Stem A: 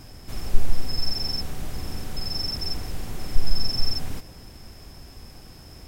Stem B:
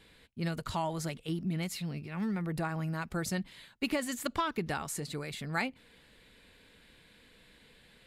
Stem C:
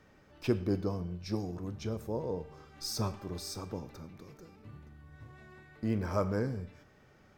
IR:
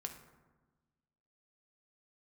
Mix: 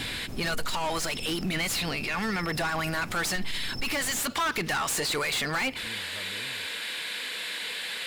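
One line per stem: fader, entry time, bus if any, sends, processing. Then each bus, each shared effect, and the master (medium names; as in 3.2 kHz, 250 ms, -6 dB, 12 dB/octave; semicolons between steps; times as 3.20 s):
+1.0 dB, 0.00 s, no send, peaking EQ 260 Hz +10.5 dB 2.4 oct; auto duck -12 dB, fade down 0.45 s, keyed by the second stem
+1.0 dB, 0.00 s, no send, tilt EQ +3 dB/octave; overdrive pedal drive 31 dB, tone 4 kHz, clips at -14.5 dBFS
-16.0 dB, 0.00 s, no send, steep low-pass 1.8 kHz 96 dB/octave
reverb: none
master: peak limiter -23 dBFS, peak gain reduction 12 dB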